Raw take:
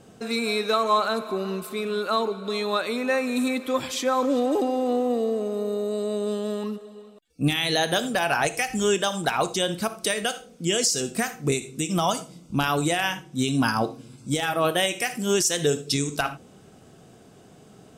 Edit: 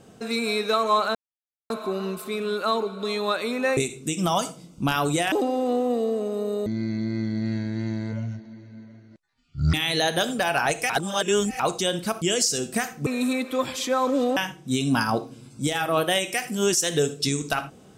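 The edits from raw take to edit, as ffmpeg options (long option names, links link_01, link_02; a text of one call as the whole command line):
ffmpeg -i in.wav -filter_complex "[0:a]asplit=11[link_01][link_02][link_03][link_04][link_05][link_06][link_07][link_08][link_09][link_10][link_11];[link_01]atrim=end=1.15,asetpts=PTS-STARTPTS,afade=type=out:start_time=1.146:duration=0.004:curve=hsin,apad=pad_dur=0.55[link_12];[link_02]atrim=start=1.15:end=3.222,asetpts=PTS-STARTPTS,afade=type=in:duration=0.004:curve=hsin[link_13];[link_03]atrim=start=11.488:end=13.042[link_14];[link_04]atrim=start=4.518:end=5.864[link_15];[link_05]atrim=start=5.86:end=7.49,asetpts=PTS-STARTPTS,asetrate=23373,aresample=44100,atrim=end_sample=135628,asetpts=PTS-STARTPTS[link_16];[link_06]atrim=start=7.486:end=8.652[link_17];[link_07]atrim=start=8.648:end=9.352,asetpts=PTS-STARTPTS,areverse[link_18];[link_08]atrim=start=9.348:end=9.972[link_19];[link_09]atrim=start=10.638:end=11.492[link_20];[link_10]atrim=start=3.218:end=4.522[link_21];[link_11]atrim=start=13.038[link_22];[link_12][link_13]concat=n=2:v=0:a=1[link_23];[link_23][link_14]acrossfade=duration=0.004:curve1=hsin:curve2=hsin[link_24];[link_24][link_15]acrossfade=duration=0.004:curve1=hsin:curve2=hsin[link_25];[link_25][link_16]acrossfade=duration=0.004:curve1=hsin:curve2=hsin[link_26];[link_26][link_17]acrossfade=duration=0.004:curve1=hsin:curve2=hsin[link_27];[link_27][link_18]acrossfade=duration=0.004:curve1=hsin:curve2=hsin[link_28];[link_28][link_19]acrossfade=duration=0.004:curve1=hsin:curve2=hsin[link_29];[link_29][link_20]acrossfade=duration=0.004:curve1=hsin:curve2=hsin[link_30];[link_30][link_21]acrossfade=duration=0.004:curve1=hsin:curve2=hsin[link_31];[link_31][link_22]acrossfade=duration=0.004:curve1=hsin:curve2=hsin" out.wav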